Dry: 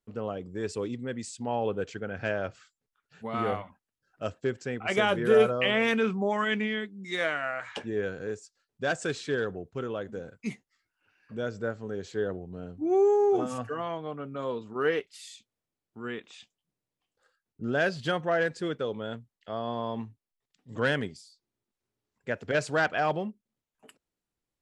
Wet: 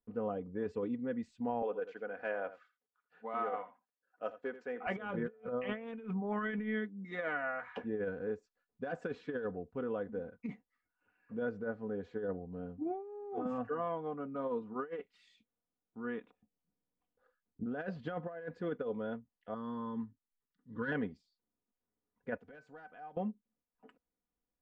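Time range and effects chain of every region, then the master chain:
1.62–4.87 HPF 450 Hz + echo 83 ms -14.5 dB
16.26–17.66 treble ducked by the level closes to 440 Hz, closed at -51 dBFS + low shelf 360 Hz +4.5 dB
19.54–20.92 fixed phaser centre 2500 Hz, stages 6 + hard clip -18.5 dBFS
22.37–23.17 high shelf 4600 Hz +10.5 dB + compressor 3:1, threshold -40 dBFS + resonator 760 Hz, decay 0.23 s, mix 70%
whole clip: LPF 1500 Hz 12 dB/oct; comb 4.1 ms, depth 59%; negative-ratio compressor -29 dBFS, ratio -0.5; gain -7 dB

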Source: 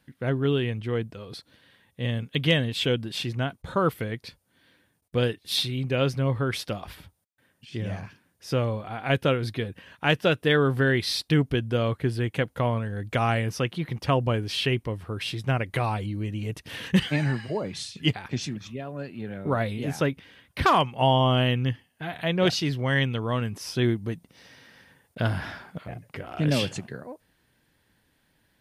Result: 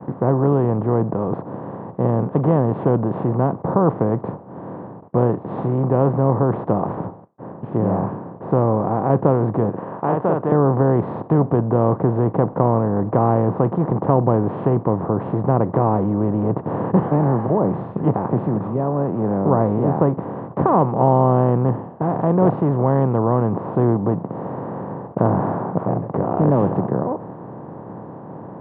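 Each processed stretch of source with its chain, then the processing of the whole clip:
9.69–10.52 band-pass 1700 Hz, Q 0.66 + doubler 44 ms -5 dB
whole clip: per-bin compression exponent 0.4; elliptic band-pass 110–940 Hz, stop band 80 dB; expander -33 dBFS; gain +3 dB

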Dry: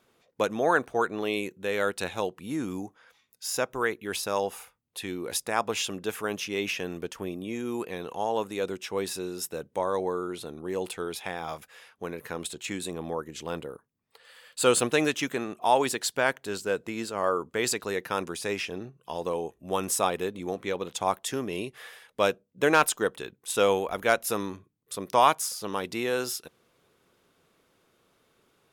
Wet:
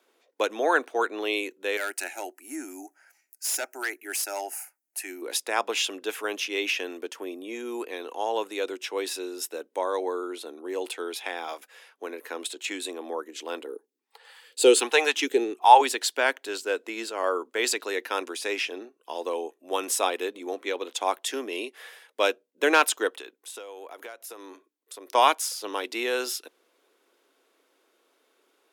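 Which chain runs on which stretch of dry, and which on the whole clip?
1.77–5.22 tone controls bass -13 dB, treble +10 dB + fixed phaser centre 720 Hz, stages 8 + hard clip -25.5 dBFS
13.66–15.81 phaser stages 2, 1.3 Hz, lowest notch 300–1100 Hz + small resonant body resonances 420/810 Hz, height 15 dB, ringing for 20 ms
23.1–25.15 tone controls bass -8 dB, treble 0 dB + compressor 10:1, threshold -37 dBFS
whole clip: steep high-pass 270 Hz 48 dB/oct; notch 1200 Hz, Q 18; dynamic EQ 3000 Hz, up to +5 dB, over -44 dBFS, Q 0.82

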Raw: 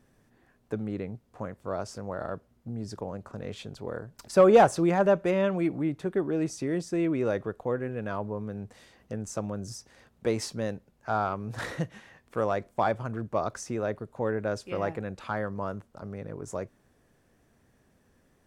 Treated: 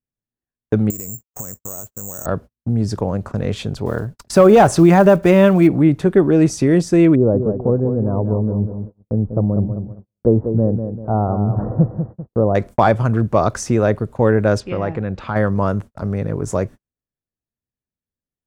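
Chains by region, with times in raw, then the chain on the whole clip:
0.9–2.26 expander -54 dBFS + compressor 10:1, threshold -46 dBFS + careless resampling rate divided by 6×, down filtered, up zero stuff
3.86–5.69 block floating point 7-bit + notch 510 Hz, Q 10
7.15–12.55 Gaussian blur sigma 11 samples + feedback echo 0.194 s, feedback 40%, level -8 dB
14.6–15.36 compressor 1.5:1, threshold -40 dBFS + air absorption 140 m
whole clip: gate -46 dBFS, range -46 dB; low shelf 210 Hz +8.5 dB; maximiser +13.5 dB; gain -1 dB

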